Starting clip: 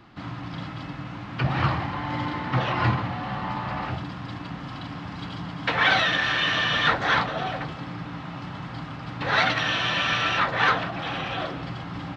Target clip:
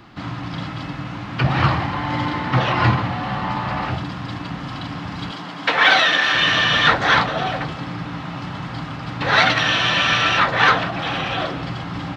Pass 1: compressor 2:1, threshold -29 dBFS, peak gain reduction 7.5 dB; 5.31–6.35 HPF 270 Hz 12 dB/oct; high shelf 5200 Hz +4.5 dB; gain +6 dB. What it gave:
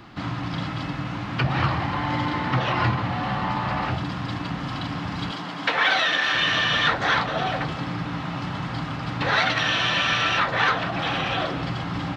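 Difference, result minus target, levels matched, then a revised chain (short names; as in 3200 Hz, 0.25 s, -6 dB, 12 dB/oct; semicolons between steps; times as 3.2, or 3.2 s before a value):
compressor: peak gain reduction +7.5 dB
5.31–6.35 HPF 270 Hz 12 dB/oct; high shelf 5200 Hz +4.5 dB; gain +6 dB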